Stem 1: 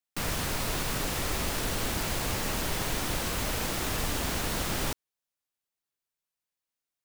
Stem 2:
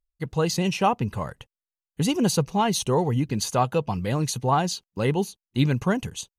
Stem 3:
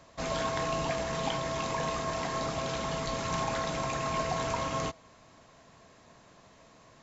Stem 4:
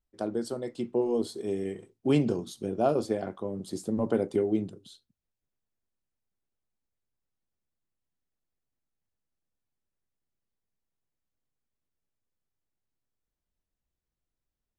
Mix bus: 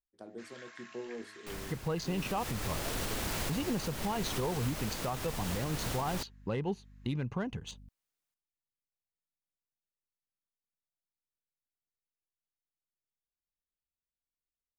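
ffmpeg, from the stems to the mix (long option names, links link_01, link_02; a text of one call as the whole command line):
ffmpeg -i stem1.wav -i stem2.wav -i stem3.wav -i stem4.wav -filter_complex "[0:a]adelay=1300,volume=-0.5dB,afade=type=in:start_time=2.02:duration=0.44:silence=0.223872[link_01];[1:a]adynamicsmooth=sensitivity=2:basefreq=2900,aeval=exprs='val(0)+0.00316*(sin(2*PI*50*n/s)+sin(2*PI*2*50*n/s)/2+sin(2*PI*3*50*n/s)/3+sin(2*PI*4*50*n/s)/4+sin(2*PI*5*50*n/s)/5)':channel_layout=same,adelay=1500,volume=-1.5dB[link_02];[2:a]highpass=frequency=1700:width_type=q:width=3.2,adelay=200,volume=-19.5dB[link_03];[3:a]bandreject=frequency=105.4:width_type=h:width=4,bandreject=frequency=210.8:width_type=h:width=4,bandreject=frequency=316.2:width_type=h:width=4,bandreject=frequency=421.6:width_type=h:width=4,bandreject=frequency=527:width_type=h:width=4,bandreject=frequency=632.4:width_type=h:width=4,bandreject=frequency=737.8:width_type=h:width=4,bandreject=frequency=843.2:width_type=h:width=4,volume=-15dB[link_04];[link_01][link_02][link_03][link_04]amix=inputs=4:normalize=0,alimiter=limit=-24dB:level=0:latency=1:release=395" out.wav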